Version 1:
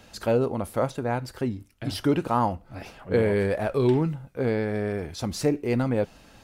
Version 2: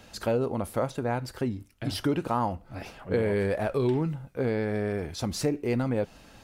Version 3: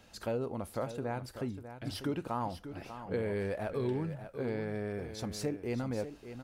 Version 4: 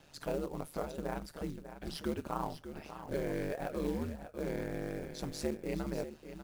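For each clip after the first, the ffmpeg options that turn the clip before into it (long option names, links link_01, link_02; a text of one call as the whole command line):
ffmpeg -i in.wav -af "acompressor=threshold=-25dB:ratio=2" out.wav
ffmpeg -i in.wav -af "aecho=1:1:594:0.282,volume=-8dB" out.wav
ffmpeg -i in.wav -af "aeval=exprs='val(0)*sin(2*PI*74*n/s)':channel_layout=same,acrusher=bits=5:mode=log:mix=0:aa=0.000001,volume=1dB" out.wav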